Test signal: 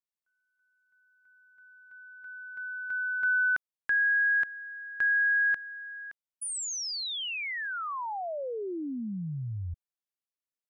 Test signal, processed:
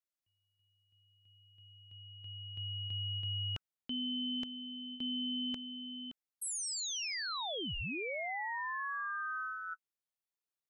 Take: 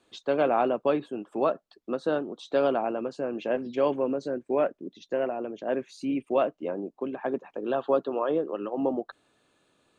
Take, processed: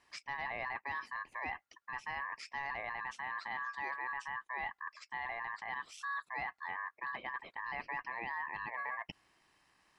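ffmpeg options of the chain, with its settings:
ffmpeg -i in.wav -af "equalizer=frequency=99:width_type=o:width=0.47:gain=-6,areverse,acompressor=threshold=-33dB:ratio=6:attack=1.7:release=92:knee=1:detection=rms,areverse,aeval=exprs='val(0)*sin(2*PI*1400*n/s)':channel_layout=same" out.wav

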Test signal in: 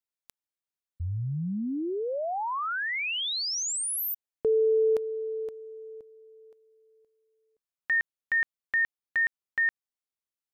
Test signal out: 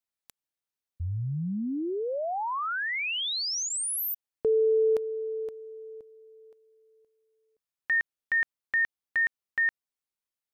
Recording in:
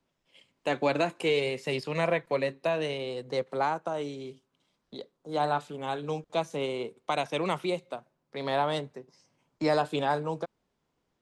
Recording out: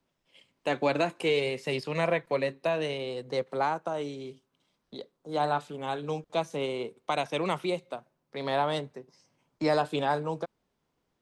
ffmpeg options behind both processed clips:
ffmpeg -i in.wav -af "bandreject=frequency=7100:width=27" out.wav

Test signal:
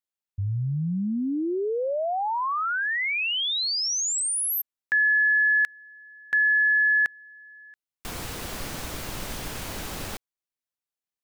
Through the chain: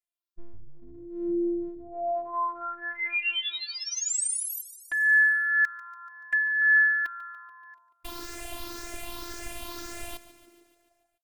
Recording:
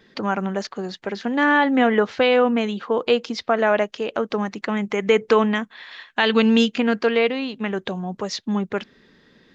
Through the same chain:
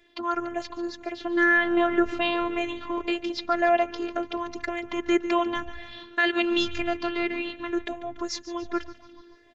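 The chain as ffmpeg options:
ffmpeg -i in.wav -filter_complex "[0:a]afftfilt=real='re*pow(10,9/40*sin(2*PI*(0.51*log(max(b,1)*sr/1024/100)/log(2)-(1.9)*(pts-256)/sr)))':imag='im*pow(10,9/40*sin(2*PI*(0.51*log(max(b,1)*sr/1024/100)/log(2)-(1.9)*(pts-256)/sr)))':win_size=1024:overlap=0.75,asplit=8[link_01][link_02][link_03][link_04][link_05][link_06][link_07][link_08];[link_02]adelay=144,afreqshift=-120,volume=-15.5dB[link_09];[link_03]adelay=288,afreqshift=-240,volume=-19.5dB[link_10];[link_04]adelay=432,afreqshift=-360,volume=-23.5dB[link_11];[link_05]adelay=576,afreqshift=-480,volume=-27.5dB[link_12];[link_06]adelay=720,afreqshift=-600,volume=-31.6dB[link_13];[link_07]adelay=864,afreqshift=-720,volume=-35.6dB[link_14];[link_08]adelay=1008,afreqshift=-840,volume=-39.6dB[link_15];[link_01][link_09][link_10][link_11][link_12][link_13][link_14][link_15]amix=inputs=8:normalize=0,afftfilt=real='hypot(re,im)*cos(PI*b)':imag='0':win_size=512:overlap=0.75,volume=-2dB" out.wav

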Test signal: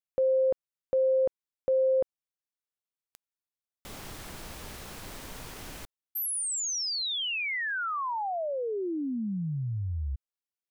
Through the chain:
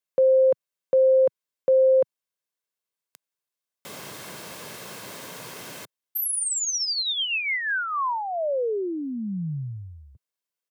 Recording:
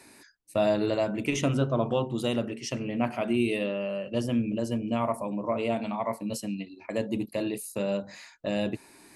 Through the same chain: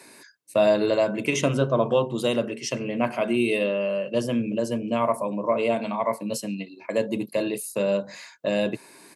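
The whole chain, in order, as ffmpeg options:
ffmpeg -i in.wav -af "highpass=frequency=140:width=0.5412,highpass=frequency=140:width=1.3066,aecho=1:1:1.9:0.33,volume=4.5dB" out.wav

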